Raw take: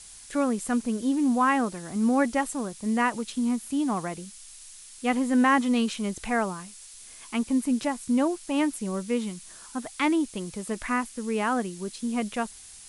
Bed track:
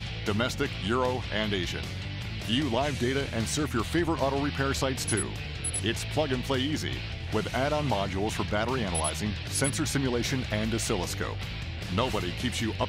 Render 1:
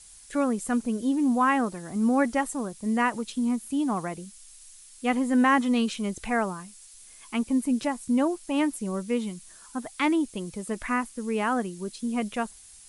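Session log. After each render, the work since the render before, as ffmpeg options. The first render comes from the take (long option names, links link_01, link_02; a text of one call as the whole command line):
ffmpeg -i in.wav -af "afftdn=noise_reduction=6:noise_floor=-47" out.wav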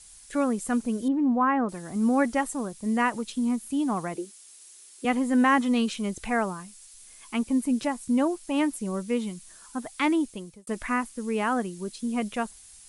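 ffmpeg -i in.wav -filter_complex "[0:a]asettb=1/sr,asplit=3[link_01][link_02][link_03];[link_01]atrim=end=1.084[link_04];[link_02]atrim=start=1.08:end=1.69,asetpts=PTS-STARTPTS,afade=type=in:duration=0.004:curve=qsin,afade=type=out:start_time=0.606:duration=0.004:curve=qsin,lowpass=1600[link_05];[link_03]atrim=start=1.686[link_06];[link_04][link_05]acrossfade=duration=0.004:curve1=hsin:curve2=qsin[link_07];[link_07][link_06]acrossfade=duration=0.004:curve1=qsin:curve2=hsin,asettb=1/sr,asplit=3[link_08][link_09][link_10];[link_08]atrim=end=4.154[link_11];[link_09]atrim=start=4.15:end=5.05,asetpts=PTS-STARTPTS,afade=type=in:duration=0.004:curve=qsin,afade=type=out:start_time=0.896:duration=0.004:curve=qsin,highpass=frequency=360:width_type=q:width=4.5[link_12];[link_10]atrim=start=5.046[link_13];[link_11][link_12]acrossfade=duration=0.004:curve1=hsin:curve2=qsin[link_14];[link_14][link_13]acrossfade=duration=0.004:curve1=qsin:curve2=hsin,asplit=2[link_15][link_16];[link_15]atrim=end=10.67,asetpts=PTS-STARTPTS,afade=type=out:start_time=10.22:duration=0.45[link_17];[link_16]atrim=start=10.67,asetpts=PTS-STARTPTS,afade=type=in:duration=0.004:curve=hsin[link_18];[link_17][link_18]concat=n=2:v=0:a=1" out.wav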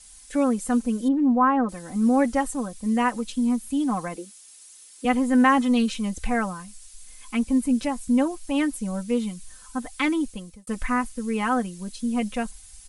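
ffmpeg -i in.wav -af "asubboost=boost=3:cutoff=140,aecho=1:1:3.9:0.73" out.wav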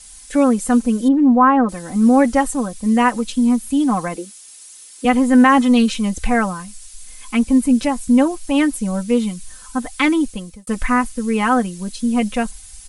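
ffmpeg -i in.wav -af "volume=7.5dB,alimiter=limit=-3dB:level=0:latency=1" out.wav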